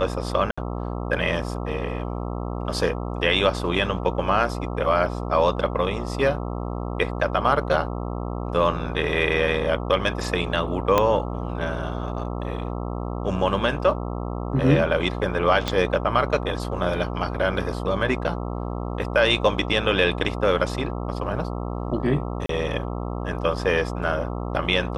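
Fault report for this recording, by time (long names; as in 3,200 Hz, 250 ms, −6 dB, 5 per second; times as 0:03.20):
mains buzz 60 Hz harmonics 22 −29 dBFS
0:00.51–0:00.57: drop-out 65 ms
0:10.98: click −5 dBFS
0:15.68: click −9 dBFS
0:22.46–0:22.49: drop-out 33 ms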